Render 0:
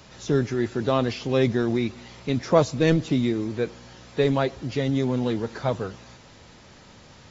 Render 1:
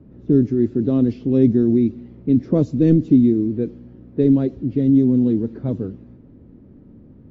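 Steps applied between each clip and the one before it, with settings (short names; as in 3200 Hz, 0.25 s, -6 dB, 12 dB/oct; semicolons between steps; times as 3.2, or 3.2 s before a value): low-pass opened by the level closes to 1300 Hz, open at -17 dBFS; EQ curve 150 Hz 0 dB, 280 Hz +7 dB, 850 Hz -21 dB; gain +5 dB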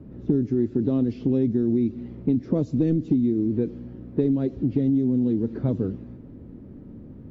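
compressor, threshold -22 dBFS, peak gain reduction 13 dB; gain +3 dB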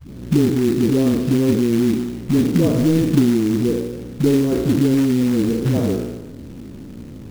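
spectral trails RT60 1.14 s; dispersion highs, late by 0.104 s, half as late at 310 Hz; short-mantissa float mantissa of 2-bit; gain +4.5 dB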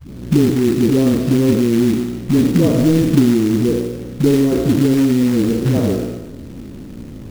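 reverb RT60 0.15 s, pre-delay 63 ms, DRR 9 dB; gain +2.5 dB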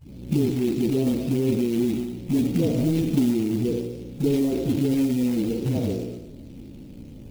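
bin magnitudes rounded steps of 15 dB; band shelf 1400 Hz -8.5 dB 1.1 oct; reverse echo 33 ms -17 dB; gain -8.5 dB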